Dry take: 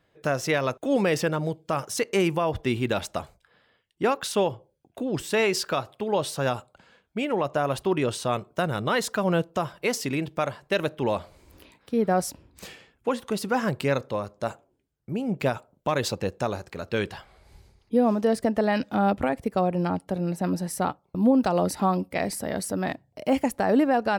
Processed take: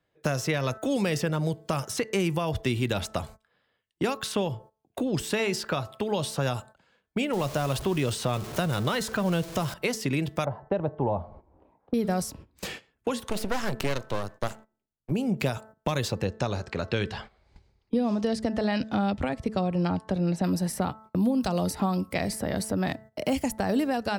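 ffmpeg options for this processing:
-filter_complex "[0:a]asettb=1/sr,asplit=3[a][b][c];[a]atrim=end=7.334[d];[b]atrim=start=7.33:end=9.74,asetpts=PTS-STARTPTS,afade=t=in:d=0.004:c=qsin,afade=t=out:st=2.406:d=0.004:c=qsin,aeval=exprs='val(0)+0.5*0.0158*sgn(val(0))':c=same[e];[c]atrim=start=9.736[f];[d][e]acrossfade=d=0.004:c1=hsin:c2=qsin[g];[g][f]acrossfade=d=0.004:c1=qsin:c2=hsin,asettb=1/sr,asplit=3[h][i][j];[h]atrim=end=10.454[k];[i]atrim=start=10.45:end=11.94,asetpts=PTS-STARTPTS,afade=t=in:d=0.004:c=qsin,afade=t=out:st=1.486:d=0.004:c=qsin,lowpass=f=810:t=q:w=2.9[l];[j]atrim=start=11.936[m];[k][l]acrossfade=d=0.004:c1=hsin:c2=qsin[n];[n][m]acrossfade=d=0.004:c1=qsin:c2=hsin,asettb=1/sr,asplit=3[o][p][q];[o]atrim=end=13.294[r];[p]atrim=start=13.29:end=15.11,asetpts=PTS-STARTPTS,afade=t=in:d=0.004:c=qsin,afade=t=out:st=1.816:d=0.004:c=qsin,aeval=exprs='max(val(0),0)':c=same[s];[q]atrim=start=15.106[t];[r][s]acrossfade=d=0.004:c1=hsin:c2=qsin[u];[u][t]acrossfade=d=0.004:c1=qsin:c2=hsin,asettb=1/sr,asplit=3[v][w][x];[v]atrim=end=16.254[y];[w]atrim=start=16.25:end=20.44,asetpts=PTS-STARTPTS,afade=t=in:d=0.004:c=qsin,afade=t=out:st=4.186:d=0.004:c=qsin,lowpass=5.4k[z];[x]atrim=start=20.436[aa];[y][z]acrossfade=d=0.004:c1=hsin:c2=qsin[ab];[ab][aa]acrossfade=d=0.004:c1=qsin:c2=hsin,bandreject=f=218.7:t=h:w=4,bandreject=f=437.4:t=h:w=4,bandreject=f=656.1:t=h:w=4,bandreject=f=874.8:t=h:w=4,bandreject=f=1.0935k:t=h:w=4,bandreject=f=1.3122k:t=h:w=4,bandreject=f=1.5309k:t=h:w=4,bandreject=f=1.7496k:t=h:w=4,bandreject=f=1.9683k:t=h:w=4,agate=range=-16dB:threshold=-46dB:ratio=16:detection=peak,acrossover=split=160|3300[ac][ad][ae];[ac]acompressor=threshold=-37dB:ratio=4[af];[ad]acompressor=threshold=-36dB:ratio=4[ag];[ae]acompressor=threshold=-44dB:ratio=4[ah];[af][ag][ah]amix=inputs=3:normalize=0,volume=7.5dB"

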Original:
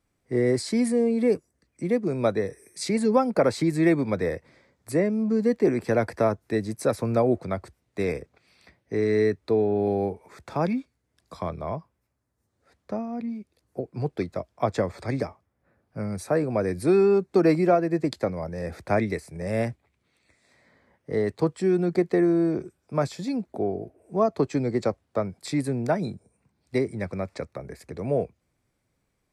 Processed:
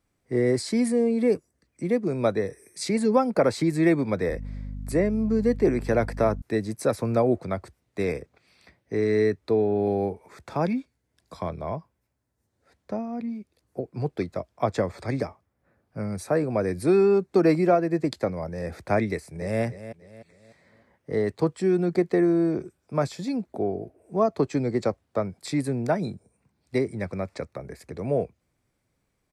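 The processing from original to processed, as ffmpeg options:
-filter_complex "[0:a]asettb=1/sr,asplit=3[a][b][c];[a]atrim=end=4.294[d];[b]atrim=start=4.29:end=6.42,asetpts=PTS-STARTPTS,afade=t=in:d=0.004:c=qsin,afade=t=out:st=2.126:d=0.004:c=qsin,aeval=exprs='val(0)+0.0224*(sin(2*PI*50*n/s)+sin(2*PI*2*50*n/s)/2+sin(2*PI*3*50*n/s)/3+sin(2*PI*4*50*n/s)/4+sin(2*PI*5*50*n/s)/5)':c=same[e];[c]atrim=start=6.416[f];[d][e]acrossfade=d=0.004:c1=hsin:c2=qsin[g];[g][f]acrossfade=d=0.004:c1=qsin:c2=hsin,asettb=1/sr,asplit=3[h][i][j];[h]atrim=end=10.604[k];[i]atrim=start=10.6:end=13.06,asetpts=PTS-STARTPTS,afade=t=in:d=0.004:c=qsin,afade=t=out:st=2.456:d=0.004:c=qsin,bandreject=f=1.2k:w=12[l];[j]atrim=start=13.056[m];[k][l]acrossfade=d=0.004:c1=hsin:c2=qsin[n];[n][m]acrossfade=d=0.004:c1=qsin:c2=hsin,asplit=2[o][p];[p]afade=t=in:st=19.08:d=0.01,afade=t=out:st=19.62:d=0.01,aecho=0:1:300|600|900|1200:0.223872|0.0895488|0.0358195|0.0143278[q];[o][q]amix=inputs=2:normalize=0"

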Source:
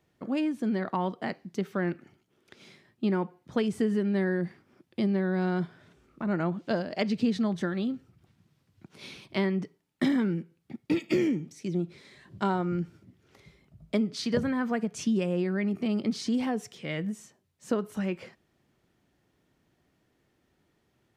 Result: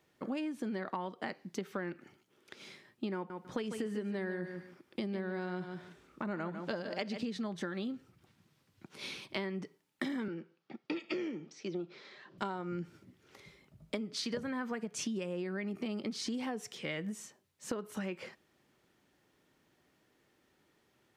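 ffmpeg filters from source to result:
-filter_complex "[0:a]asettb=1/sr,asplit=3[a][b][c];[a]atrim=end=3.154[d];[b]atrim=start=3.15:end=7.25,asetpts=PTS-STARTPTS,afade=t=in:d=0.004:c=qsin,afade=t=out:st=4.096:d=0.004:c=qsin,aecho=1:1:148|296:0.316|0.0538,atrim=end_sample=180810[e];[c]atrim=start=7.246[f];[d][e]acrossfade=d=0.004:c1=hsin:c2=qsin[g];[g][f]acrossfade=d=0.004:c1=qsin:c2=hsin,asettb=1/sr,asplit=3[h][i][j];[h]atrim=end=10.284[k];[i]atrim=start=10.28:end=12.38,asetpts=PTS-STARTPTS,afade=t=in:d=0.004:c=qsin,afade=t=out:st=2.096:d=0.004:c=qsin,highpass=f=170:w=0.5412,highpass=f=170:w=1.3066,equalizer=f=180:t=q:w=4:g=-5,equalizer=f=260:t=q:w=4:g=-7,equalizer=f=700:t=q:w=4:g=3,equalizer=f=1.3k:t=q:w=4:g=4,equalizer=f=2.1k:t=q:w=4:g=-4,equalizer=f=3.9k:t=q:w=4:g=-3,lowpass=f=5.2k:w=0.5412,lowpass=f=5.2k:w=1.3066[l];[j]atrim=start=12.376[m];[k][l]acrossfade=d=0.004:c1=hsin:c2=qsin[n];[n][m]acrossfade=d=0.004:c1=qsin:c2=hsin,lowshelf=f=200:g=-11.5,bandreject=f=690:w=12,acompressor=threshold=-37dB:ratio=6,volume=2.5dB"

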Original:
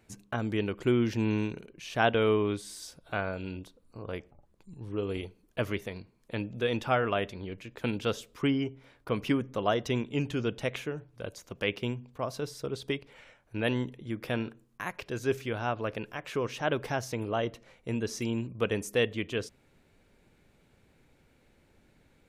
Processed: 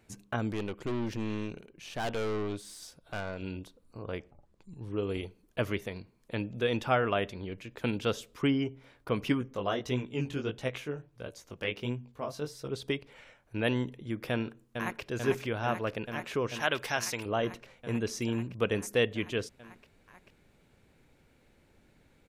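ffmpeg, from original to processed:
-filter_complex "[0:a]asettb=1/sr,asplit=3[a][b][c];[a]atrim=end=0.524[d];[b]atrim=start=0.52:end=3.42,asetpts=PTS-STARTPTS,afade=t=in:d=0.004:c=qsin,afade=t=out:st=2.896:d=0.004:c=qsin,aeval=exprs='(tanh(31.6*val(0)+0.65)-tanh(0.65))/31.6':c=same[e];[c]atrim=start=3.416[f];[d][e]acrossfade=d=0.004:c1=hsin:c2=qsin[g];[g][f]acrossfade=d=0.004:c1=qsin:c2=hsin,asettb=1/sr,asplit=3[h][i][j];[h]atrim=end=4.044[k];[i]atrim=start=4.04:end=4.77,asetpts=PTS-STARTPTS,afade=t=in:d=0.004:c=qsin,afade=t=out:st=0.726:d=0.004:c=qsin,lowpass=8.9k[l];[j]atrim=start=4.766[m];[k][l]acrossfade=d=0.004:c1=hsin:c2=qsin[n];[n][m]acrossfade=d=0.004:c1=qsin:c2=hsin,asplit=3[o][p][q];[o]afade=t=out:st=9.32:d=0.02[r];[p]flanger=delay=15.5:depth=6:speed=1.5,afade=t=in:st=9.32:d=0.02,afade=t=out:st=12.69:d=0.02[s];[q]afade=t=in:st=12.69:d=0.02[t];[r][s][t]amix=inputs=3:normalize=0,asplit=2[u][v];[v]afade=t=in:st=14.31:d=0.01,afade=t=out:st=15.02:d=0.01,aecho=0:1:440|880|1320|1760|2200|2640|3080|3520|3960|4400|4840|5280:0.530884|0.451252|0.383564|0.326029|0.277125|0.235556|0.200223|0.170189|0.144661|0.122962|0.104518|0.0888399[w];[u][w]amix=inputs=2:normalize=0,asettb=1/sr,asplit=3[x][y][z];[x]atrim=end=16.604[aa];[y]atrim=start=16.6:end=17.26,asetpts=PTS-STARTPTS,afade=t=in:d=0.004:c=qsin,afade=t=out:st=0.656:d=0.004:c=qsin,tiltshelf=f=880:g=-8[ab];[z]atrim=start=17.256[ac];[aa][ab]acrossfade=d=0.004:c1=hsin:c2=qsin[ad];[ad][ac]acrossfade=d=0.004:c1=qsin:c2=hsin"

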